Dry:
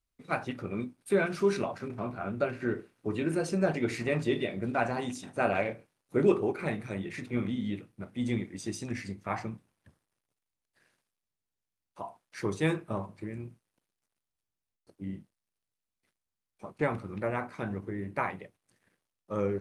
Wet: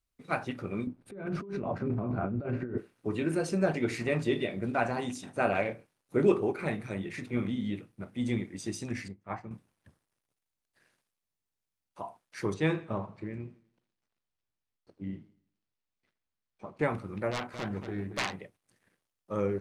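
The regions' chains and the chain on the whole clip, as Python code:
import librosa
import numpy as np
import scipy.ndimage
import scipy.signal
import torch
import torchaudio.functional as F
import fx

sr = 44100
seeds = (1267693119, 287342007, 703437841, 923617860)

y = fx.chain(x, sr, fx.low_shelf(hz=400.0, db=7.0),
    fx.over_compress(threshold_db=-34.0, ratio=-1.0),
    fx.lowpass(hz=1000.0, slope=6), at=(0.87, 2.78))
y = fx.chain(y, sr, fx.high_shelf(hz=2700.0, db=-11.5),
    fx.transient(attack_db=-3, sustain_db=3),
    fx.upward_expand(threshold_db=-44.0, expansion=2.5), at=(9.08, 9.51))
y = fx.chain(y, sr, fx.lowpass(hz=4800.0, slope=12),
    fx.echo_warbled(ms=84, feedback_pct=40, rate_hz=2.8, cents=81, wet_db=-18.0), at=(12.54, 16.79))
y = fx.chain(y, sr, fx.self_delay(depth_ms=0.7),
    fx.echo_single(ms=226, db=-9.0), at=(17.31, 18.38))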